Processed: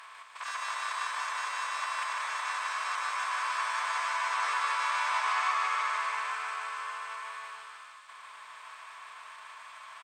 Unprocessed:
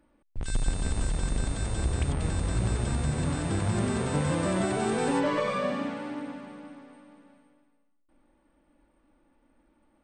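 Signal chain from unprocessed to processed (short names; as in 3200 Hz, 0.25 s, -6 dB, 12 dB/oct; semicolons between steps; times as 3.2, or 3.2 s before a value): per-bin compression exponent 0.4; elliptic high-pass 1000 Hz, stop band 80 dB; dynamic EQ 3600 Hz, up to -6 dB, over -51 dBFS, Q 1.6; in parallel at -6.5 dB: crossover distortion -53.5 dBFS; on the sum: formant-preserving pitch shift -5 st; on a send: feedback echo 0.151 s, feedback 57%, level -4 dB; on the sum: gain -2 dB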